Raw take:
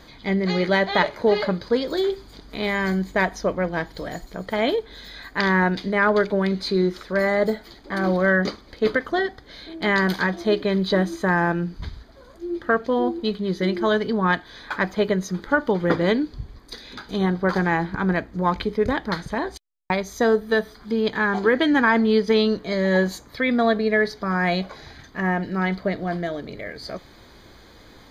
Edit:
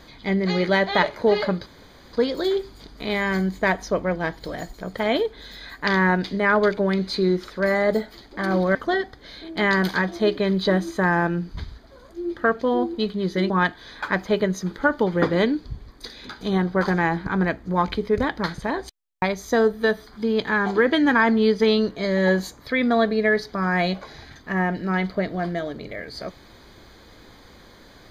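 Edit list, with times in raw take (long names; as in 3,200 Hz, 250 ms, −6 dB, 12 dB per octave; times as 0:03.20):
0:01.66: splice in room tone 0.47 s
0:08.28–0:09.00: remove
0:13.75–0:14.18: remove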